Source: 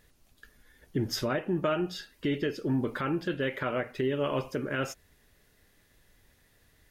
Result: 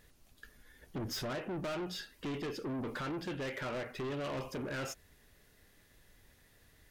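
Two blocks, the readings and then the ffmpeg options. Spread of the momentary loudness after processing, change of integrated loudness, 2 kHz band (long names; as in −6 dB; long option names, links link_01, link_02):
10 LU, −8.0 dB, −7.0 dB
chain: -af "asoftclip=type=tanh:threshold=-35.5dB"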